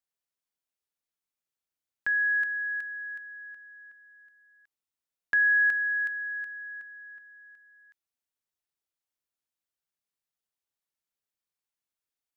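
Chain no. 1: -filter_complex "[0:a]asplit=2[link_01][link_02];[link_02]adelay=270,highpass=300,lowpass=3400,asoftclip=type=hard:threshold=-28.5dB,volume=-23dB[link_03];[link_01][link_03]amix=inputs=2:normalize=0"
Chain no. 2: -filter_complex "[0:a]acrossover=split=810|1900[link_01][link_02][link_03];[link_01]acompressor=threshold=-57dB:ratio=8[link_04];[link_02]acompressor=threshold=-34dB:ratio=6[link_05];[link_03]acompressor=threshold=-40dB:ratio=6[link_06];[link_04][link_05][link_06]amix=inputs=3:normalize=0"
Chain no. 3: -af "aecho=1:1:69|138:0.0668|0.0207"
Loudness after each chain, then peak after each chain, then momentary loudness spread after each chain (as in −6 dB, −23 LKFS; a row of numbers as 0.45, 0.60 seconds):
−26.5, −33.0, −26.5 LKFS; −18.5, −18.5, −18.5 dBFS; 21, 19, 21 LU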